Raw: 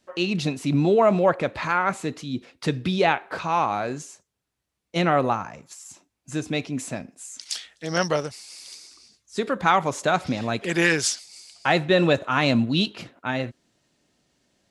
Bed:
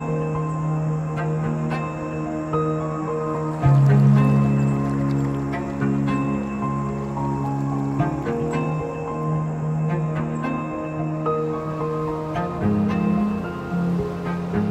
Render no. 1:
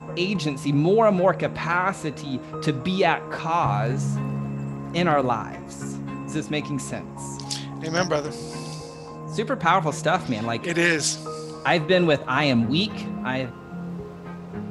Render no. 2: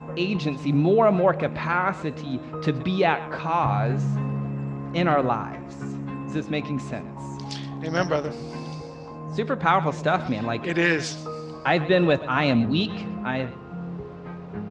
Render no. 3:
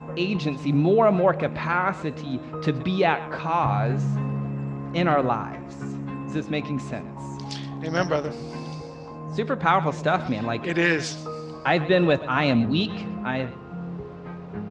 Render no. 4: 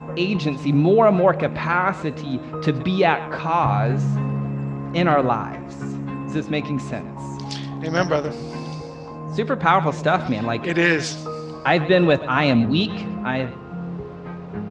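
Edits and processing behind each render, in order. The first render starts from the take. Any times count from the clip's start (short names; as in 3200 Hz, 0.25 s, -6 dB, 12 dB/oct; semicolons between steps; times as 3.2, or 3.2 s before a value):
add bed -11 dB
air absorption 150 m; echo 0.123 s -17 dB
nothing audible
gain +3.5 dB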